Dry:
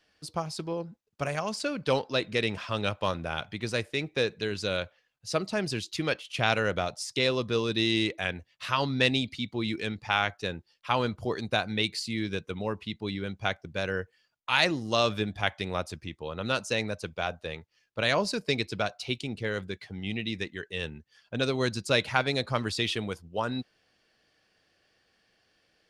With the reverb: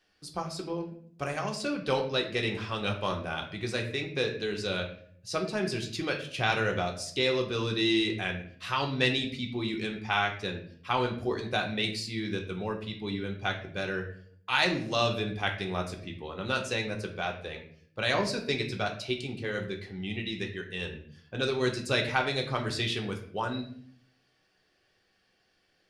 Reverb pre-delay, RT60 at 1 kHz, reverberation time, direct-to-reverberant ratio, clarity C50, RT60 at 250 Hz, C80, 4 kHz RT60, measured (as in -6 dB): 3 ms, 0.50 s, 0.55 s, 1.5 dB, 9.0 dB, 0.85 s, 12.0 dB, 0.45 s